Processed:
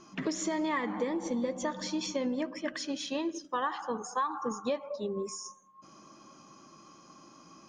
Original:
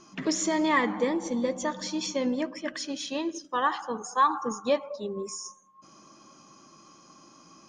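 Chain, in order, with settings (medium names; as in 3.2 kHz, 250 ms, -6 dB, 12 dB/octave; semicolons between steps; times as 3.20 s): compression 6:1, threshold -28 dBFS, peak gain reduction 10.5 dB; treble shelf 4.5 kHz -5.5 dB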